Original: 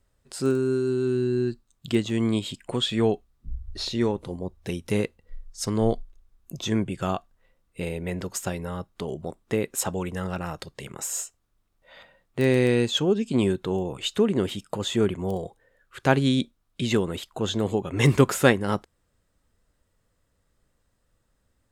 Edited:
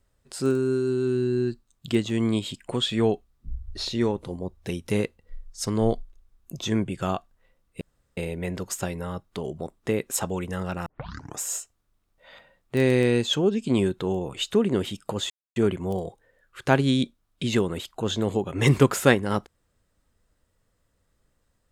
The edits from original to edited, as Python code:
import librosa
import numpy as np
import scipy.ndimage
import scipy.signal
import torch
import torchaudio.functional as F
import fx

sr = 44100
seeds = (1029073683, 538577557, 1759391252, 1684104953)

y = fx.edit(x, sr, fx.insert_room_tone(at_s=7.81, length_s=0.36),
    fx.tape_start(start_s=10.5, length_s=0.54),
    fx.insert_silence(at_s=14.94, length_s=0.26), tone=tone)